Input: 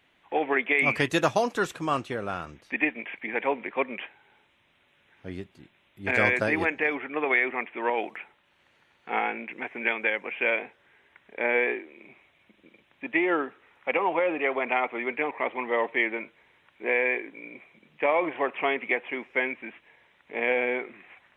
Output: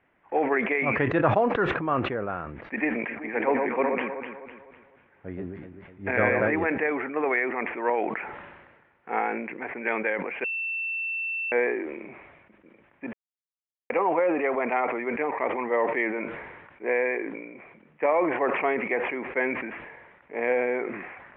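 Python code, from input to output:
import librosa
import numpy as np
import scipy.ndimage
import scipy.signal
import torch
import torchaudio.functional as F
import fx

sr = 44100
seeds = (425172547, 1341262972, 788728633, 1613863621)

y = fx.echo_alternate(x, sr, ms=126, hz=1200.0, feedback_pct=64, wet_db=-4, at=(3.07, 6.47), fade=0.02)
y = fx.edit(y, sr, fx.bleep(start_s=10.44, length_s=1.08, hz=2680.0, db=-16.5),
    fx.silence(start_s=13.13, length_s=0.77), tone=tone)
y = scipy.signal.sosfilt(scipy.signal.butter(4, 2000.0, 'lowpass', fs=sr, output='sos'), y)
y = fx.peak_eq(y, sr, hz=490.0, db=2.0, octaves=0.77)
y = fx.sustainer(y, sr, db_per_s=42.0)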